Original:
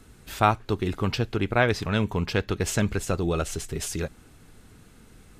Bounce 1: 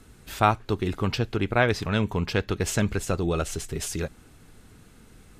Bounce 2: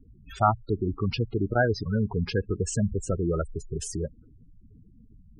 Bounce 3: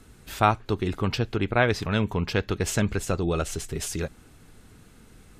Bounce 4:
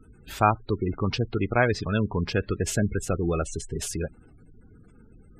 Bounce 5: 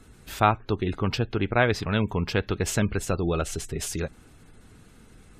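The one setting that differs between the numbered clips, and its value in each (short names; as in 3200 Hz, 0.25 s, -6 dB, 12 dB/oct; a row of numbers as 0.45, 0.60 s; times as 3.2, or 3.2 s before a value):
spectral gate, under each frame's peak: -60, -10, -50, -20, -35 dB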